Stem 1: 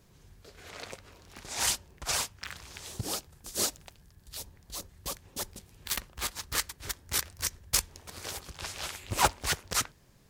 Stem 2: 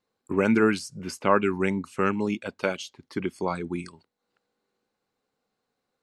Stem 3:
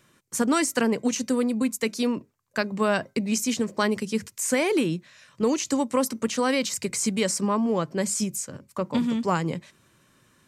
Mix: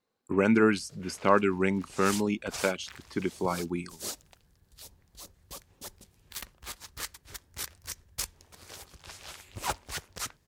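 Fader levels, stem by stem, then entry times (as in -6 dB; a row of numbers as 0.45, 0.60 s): -7.5 dB, -1.5 dB, off; 0.45 s, 0.00 s, off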